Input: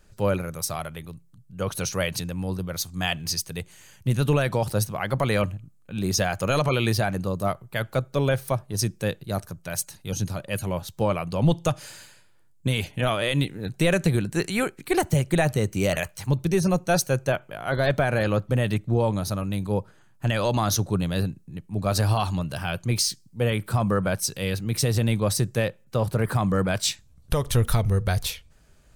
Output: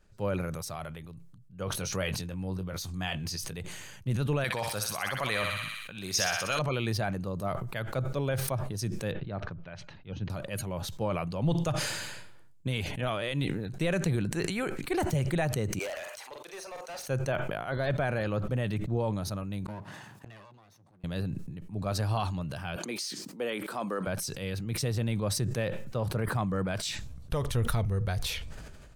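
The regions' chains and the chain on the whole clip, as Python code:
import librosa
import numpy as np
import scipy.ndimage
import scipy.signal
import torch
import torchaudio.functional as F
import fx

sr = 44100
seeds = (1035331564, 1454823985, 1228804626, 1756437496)

y = fx.chain(x, sr, fx.doubler(ms=21.0, db=-11.0),
    fx.pre_swell(db_per_s=40.0), at=(1.65, 3.59))
y = fx.chain(y, sr, fx.tilt_shelf(db=-8.0, hz=810.0),
    fx.echo_thinned(ms=62, feedback_pct=60, hz=990.0, wet_db=-3.5), at=(4.44, 6.59))
y = fx.chain(y, sr, fx.lowpass(hz=3300.0, slope=24),
    fx.upward_expand(threshold_db=-45.0, expansion=1.5), at=(9.12, 10.3))
y = fx.chain(y, sr, fx.highpass(hz=540.0, slope=24),
    fx.overload_stage(gain_db=30.5),
    fx.doubler(ms=45.0, db=-12.0), at=(15.79, 17.08))
y = fx.chain(y, sr, fx.lower_of_two(delay_ms=1.1),
    fx.highpass(hz=110.0, slope=24),
    fx.gate_flip(shuts_db=-27.0, range_db=-27), at=(19.65, 21.04))
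y = fx.chain(y, sr, fx.highpass(hz=250.0, slope=24),
    fx.band_squash(depth_pct=40), at=(22.76, 24.07))
y = fx.high_shelf(y, sr, hz=6700.0, db=-8.5)
y = fx.sustainer(y, sr, db_per_s=31.0)
y = F.gain(torch.from_numpy(y), -8.0).numpy()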